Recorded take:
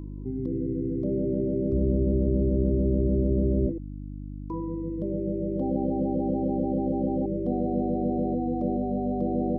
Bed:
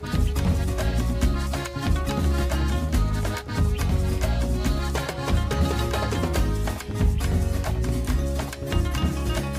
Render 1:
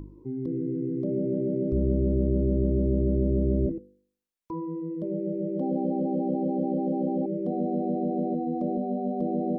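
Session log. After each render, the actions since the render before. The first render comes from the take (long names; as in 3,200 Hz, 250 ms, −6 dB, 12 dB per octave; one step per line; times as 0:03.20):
hum removal 50 Hz, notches 10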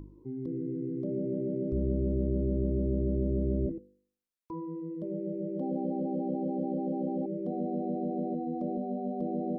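level −5 dB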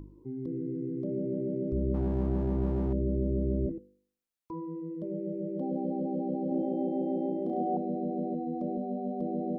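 0:01.94–0:02.93: windowed peak hold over 17 samples
0:06.48–0:07.77: flutter between parallel walls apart 5.8 metres, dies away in 1.3 s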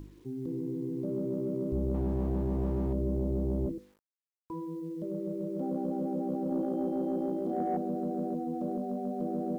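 soft clipping −20.5 dBFS, distortion −21 dB
bit reduction 11 bits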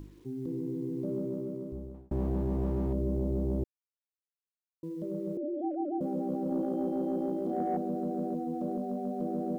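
0:01.12–0:02.11: fade out
0:03.64–0:04.83: silence
0:05.37–0:06.01: three sine waves on the formant tracks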